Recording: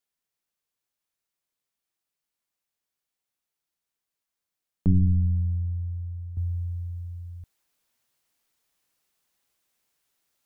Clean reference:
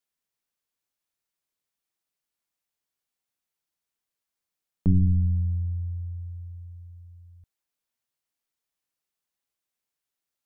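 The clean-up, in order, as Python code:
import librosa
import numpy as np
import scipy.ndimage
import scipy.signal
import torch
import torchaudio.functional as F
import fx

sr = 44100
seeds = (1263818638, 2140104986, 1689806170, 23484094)

y = fx.fix_level(x, sr, at_s=6.37, step_db=-11.0)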